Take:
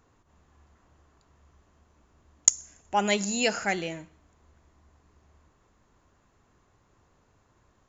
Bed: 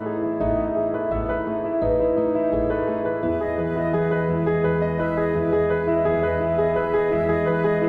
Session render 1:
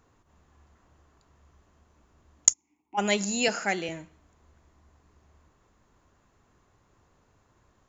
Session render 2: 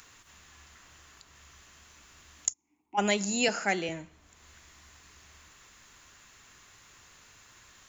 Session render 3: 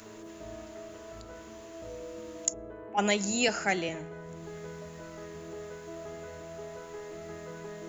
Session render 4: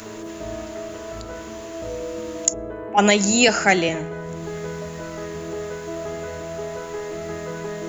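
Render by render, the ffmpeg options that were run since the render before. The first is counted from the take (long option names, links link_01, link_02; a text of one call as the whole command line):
ffmpeg -i in.wav -filter_complex "[0:a]asplit=3[link_01][link_02][link_03];[link_01]afade=type=out:start_time=2.52:duration=0.02[link_04];[link_02]asplit=3[link_05][link_06][link_07];[link_05]bandpass=frequency=300:width_type=q:width=8,volume=0dB[link_08];[link_06]bandpass=frequency=870:width_type=q:width=8,volume=-6dB[link_09];[link_07]bandpass=frequency=2240:width_type=q:width=8,volume=-9dB[link_10];[link_08][link_09][link_10]amix=inputs=3:normalize=0,afade=type=in:start_time=2.52:duration=0.02,afade=type=out:start_time=2.97:duration=0.02[link_11];[link_03]afade=type=in:start_time=2.97:duration=0.02[link_12];[link_04][link_11][link_12]amix=inputs=3:normalize=0,asettb=1/sr,asplit=3[link_13][link_14][link_15];[link_13]atrim=end=3.484[link_16];[link_14]atrim=start=3.48:end=3.89,asetpts=PTS-STARTPTS,afade=type=in:duration=0.004:curve=qsin,afade=type=out:start_time=0.406:duration=0.004:curve=qsin,highpass=frequency=170:width=0.5412,highpass=frequency=170:width=1.3066[link_17];[link_15]atrim=start=3.886[link_18];[link_16][link_17]acrossfade=duration=0.004:curve1=hsin:curve2=qsin[link_19];[link_19][link_18]acrossfade=duration=0.004:curve1=qsin:curve2=hsin" out.wav
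ffmpeg -i in.wav -filter_complex "[0:a]acrossover=split=290|1700[link_01][link_02][link_03];[link_03]acompressor=mode=upward:threshold=-40dB:ratio=2.5[link_04];[link_01][link_02][link_04]amix=inputs=3:normalize=0,alimiter=limit=-13dB:level=0:latency=1:release=314" out.wav
ffmpeg -i in.wav -i bed.wav -filter_complex "[1:a]volume=-22dB[link_01];[0:a][link_01]amix=inputs=2:normalize=0" out.wav
ffmpeg -i in.wav -af "volume=12dB,alimiter=limit=-3dB:level=0:latency=1" out.wav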